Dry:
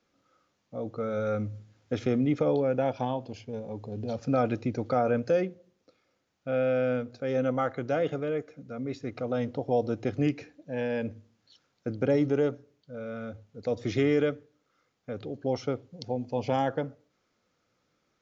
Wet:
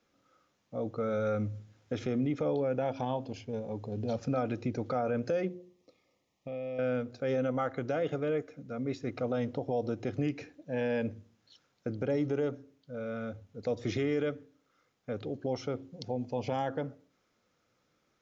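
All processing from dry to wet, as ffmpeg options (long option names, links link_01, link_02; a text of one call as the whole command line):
ffmpeg -i in.wav -filter_complex "[0:a]asettb=1/sr,asplit=3[link_01][link_02][link_03];[link_01]atrim=end=5.484[link_04];[link_02]atrim=start=5.48:end=6.79,asetpts=PTS-STARTPTS,afade=type=in:duration=0.004:curve=qsin,afade=type=out:start_time=1.306:duration=0.004:curve=qsin,acompressor=threshold=-36dB:ratio=4:attack=3.2:release=140:knee=1:detection=peak,asuperstop=centerf=1500:order=8:qfactor=2.9[link_05];[link_03]atrim=start=6.786[link_06];[link_04][link_05]acrossfade=duration=0.004:curve1=hsin:curve2=qsin[link_07];[link_07][link_06]acrossfade=duration=0.004:curve1=qsin:curve2=hsin,bandreject=frequency=4500:width=25,bandreject=frequency=89.71:width_type=h:width=4,bandreject=frequency=179.42:width_type=h:width=4,bandreject=frequency=269.13:width_type=h:width=4,bandreject=frequency=358.84:width_type=h:width=4,alimiter=limit=-22.5dB:level=0:latency=1:release=120" out.wav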